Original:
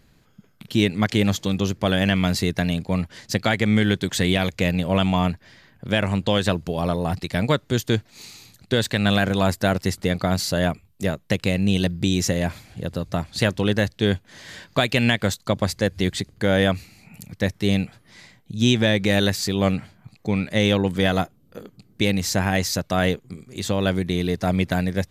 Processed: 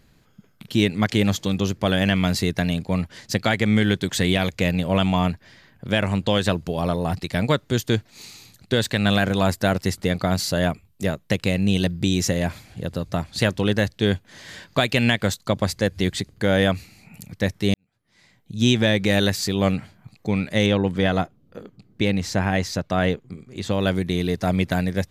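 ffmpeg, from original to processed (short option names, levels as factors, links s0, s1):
-filter_complex "[0:a]asettb=1/sr,asplit=3[s0][s1][s2];[s0]atrim=end=20.664[s3];[s1]atrim=start=20.66:end=23.71,asetpts=PTS-STARTPTS,afade=t=in:d=0.004:c=qsin,afade=t=out:st=3.046:d=0.004:c=qsin,aemphasis=mode=reproduction:type=50kf[s4];[s2]atrim=start=23.706[s5];[s3][s4]acrossfade=d=0.004:c1=hsin:c2=qsin[s6];[s6][s5]acrossfade=d=0.004:c1=qsin:c2=hsin,asplit=2[s7][s8];[s7]atrim=end=17.74,asetpts=PTS-STARTPTS,afade=t=out:st=17.736:d=0.004:c=hsin[s9];[s8]atrim=start=17.74,asetpts=PTS-STARTPTS,afade=t=in:d=0.86:c=qua[s10];[s9][s10]concat=n=2:v=0:a=1"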